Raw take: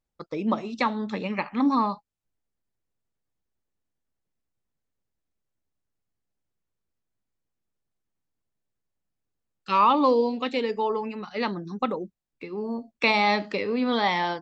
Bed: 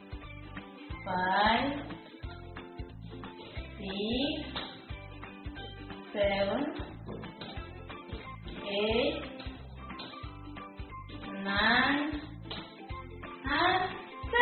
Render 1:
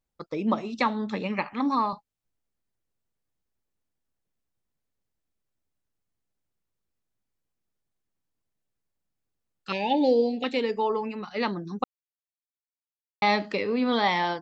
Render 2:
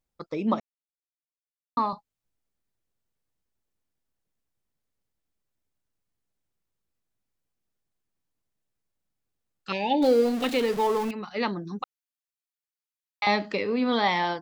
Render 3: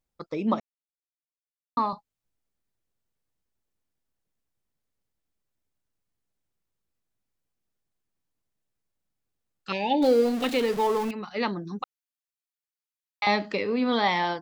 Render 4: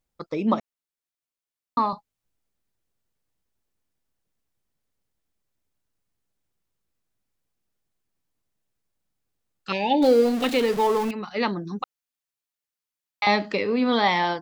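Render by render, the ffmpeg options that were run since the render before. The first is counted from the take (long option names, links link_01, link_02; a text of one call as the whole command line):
ffmpeg -i in.wav -filter_complex "[0:a]asettb=1/sr,asplit=3[link_01][link_02][link_03];[link_01]atrim=end=1.534[link_04];[link_02]atrim=start=1.53:end=1.93,asetpts=PTS-STARTPTS,afade=type=in:duration=0.004:curve=qsin,afade=type=out:start_time=0.396:duration=0.004:curve=qsin,highpass=frequency=370:poles=1[link_05];[link_03]atrim=start=1.926[link_06];[link_04][link_05]acrossfade=duration=0.004:curve1=hsin:curve2=qsin[link_07];[link_07][link_06]acrossfade=duration=0.004:curve1=qsin:curve2=hsin,asettb=1/sr,asplit=3[link_08][link_09][link_10];[link_08]atrim=end=9.724[link_11];[link_09]atrim=start=9.72:end=10.44,asetpts=PTS-STARTPTS,afade=type=in:duration=0.004:curve=qsin,afade=type=out:start_time=0.716:duration=0.004:curve=qsin,asuperstop=centerf=1200:order=12:qfactor=1.5[link_12];[link_10]atrim=start=10.436[link_13];[link_11][link_12]acrossfade=duration=0.004:curve1=hsin:curve2=qsin[link_14];[link_14][link_13]acrossfade=duration=0.004:curve1=qsin:curve2=hsin,asplit=3[link_15][link_16][link_17];[link_15]atrim=end=11.84,asetpts=PTS-STARTPTS,afade=type=out:start_time=11.836:duration=0.004:curve=hsin[link_18];[link_16]atrim=start=11.84:end=13.22,asetpts=PTS-STARTPTS,volume=0[link_19];[link_17]atrim=start=13.22,asetpts=PTS-STARTPTS,afade=type=in:duration=0.004:curve=hsin[link_20];[link_18][link_19][link_20]concat=n=3:v=0:a=1" out.wav
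ffmpeg -i in.wav -filter_complex "[0:a]asettb=1/sr,asplit=3[link_01][link_02][link_03];[link_01]atrim=end=10.024[link_04];[link_02]atrim=start=10.02:end=11.11,asetpts=PTS-STARTPTS,afade=type=in:duration=0.004:curve=qsin,afade=type=out:start_time=1.086:duration=0.004:curve=qsin,aeval=exprs='val(0)+0.5*0.0299*sgn(val(0))':channel_layout=same[link_05];[link_03]atrim=start=11.106[link_06];[link_04][link_05]acrossfade=duration=0.004:curve1=hsin:curve2=qsin[link_07];[link_07][link_06]acrossfade=duration=0.004:curve1=qsin:curve2=hsin,asettb=1/sr,asplit=3[link_08][link_09][link_10];[link_08]atrim=end=11.824[link_11];[link_09]atrim=start=11.82:end=13.27,asetpts=PTS-STARTPTS,afade=type=in:duration=0.004:curve=qsin,afade=type=out:start_time=1.446:duration=0.004:curve=qsin,highpass=1100[link_12];[link_10]atrim=start=13.266[link_13];[link_11][link_12]acrossfade=duration=0.004:curve1=hsin:curve2=qsin[link_14];[link_14][link_13]acrossfade=duration=0.004:curve1=qsin:curve2=hsin,asplit=3[link_15][link_16][link_17];[link_15]atrim=end=0.6,asetpts=PTS-STARTPTS,afade=type=out:start_time=0.596:duration=0.004:curve=hsin[link_18];[link_16]atrim=start=0.6:end=1.77,asetpts=PTS-STARTPTS,volume=0[link_19];[link_17]atrim=start=1.77,asetpts=PTS-STARTPTS,afade=type=in:duration=0.004:curve=hsin[link_20];[link_18][link_19][link_20]concat=n=3:v=0:a=1" out.wav
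ffmpeg -i in.wav -af anull out.wav
ffmpeg -i in.wav -af "volume=3dB" out.wav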